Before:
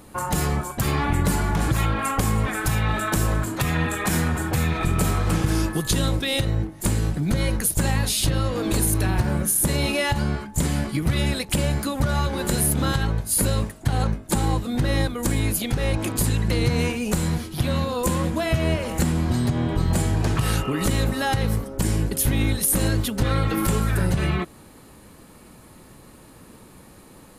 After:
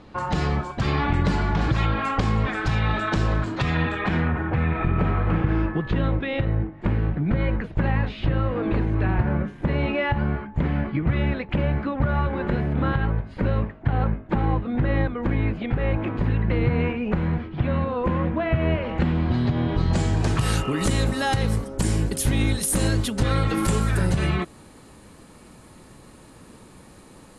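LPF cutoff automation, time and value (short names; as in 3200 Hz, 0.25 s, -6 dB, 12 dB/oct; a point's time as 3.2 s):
LPF 24 dB/oct
3.74 s 4800 Hz
4.36 s 2400 Hz
18.51 s 2400 Hz
19.76 s 4700 Hz
20.31 s 10000 Hz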